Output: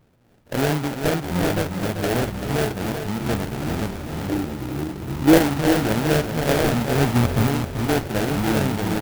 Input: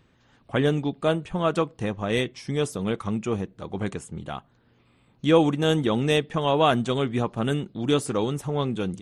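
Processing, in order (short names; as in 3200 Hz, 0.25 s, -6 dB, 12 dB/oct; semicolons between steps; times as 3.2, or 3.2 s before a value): stepped spectrum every 50 ms; in parallel at -9.5 dB: sine folder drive 5 dB, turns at -7 dBFS; on the sum: echoes that change speed 0.459 s, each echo -7 st, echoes 3, each echo -6 dB; 6.95–7.47 low shelf 170 Hz +11.5 dB; sample-rate reducer 1100 Hz, jitter 20%; flange 0.56 Hz, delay 6.6 ms, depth 7.5 ms, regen -73%; 2.67–3.24 compressor, threshold -23 dBFS, peak gain reduction 5 dB; 4.28–5.38 bell 340 Hz +9 dB 0.71 oct; on a send: feedback echo 0.388 s, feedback 43%, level -8.5 dB; on the sum: clock jitter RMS 0.026 ms; gain +1 dB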